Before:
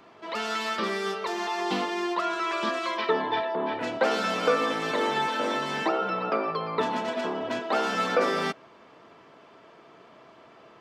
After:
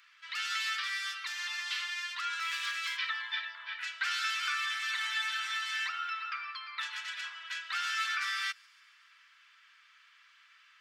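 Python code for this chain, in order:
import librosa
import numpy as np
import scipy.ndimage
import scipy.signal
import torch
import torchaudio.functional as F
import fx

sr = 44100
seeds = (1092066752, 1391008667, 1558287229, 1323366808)

y = fx.lower_of_two(x, sr, delay_ms=6.1, at=(2.4, 2.97))
y = scipy.signal.sosfilt(scipy.signal.butter(6, 1500.0, 'highpass', fs=sr, output='sos'), y)
y = fx.echo_wet_highpass(y, sr, ms=140, feedback_pct=66, hz=5100.0, wet_db=-22)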